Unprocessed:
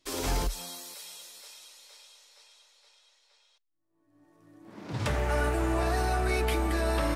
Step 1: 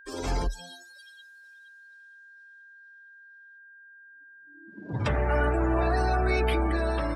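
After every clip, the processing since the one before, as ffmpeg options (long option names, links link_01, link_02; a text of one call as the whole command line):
ffmpeg -i in.wav -af "afftdn=noise_reduction=27:noise_floor=-38,dynaudnorm=framelen=100:gausssize=9:maxgain=3dB,aeval=exprs='val(0)+0.00355*sin(2*PI*1600*n/s)':channel_layout=same" out.wav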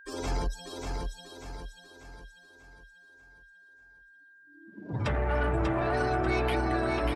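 ffmpeg -i in.wav -filter_complex "[0:a]asoftclip=type=tanh:threshold=-20dB,asplit=2[link_01][link_02];[link_02]aecho=0:1:591|1182|1773|2364|2955|3546:0.631|0.278|0.122|0.0537|0.0236|0.0104[link_03];[link_01][link_03]amix=inputs=2:normalize=0,volume=-1dB" out.wav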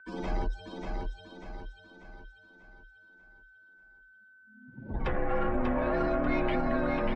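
ffmpeg -i in.wav -af "lowpass=2600,bandreject=frequency=1400:width=13,afreqshift=-78" out.wav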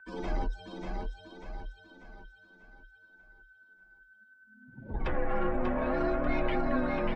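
ffmpeg -i in.wav -af "flanger=delay=1.1:depth=5.1:regen=59:speed=0.63:shape=triangular,volume=3dB" out.wav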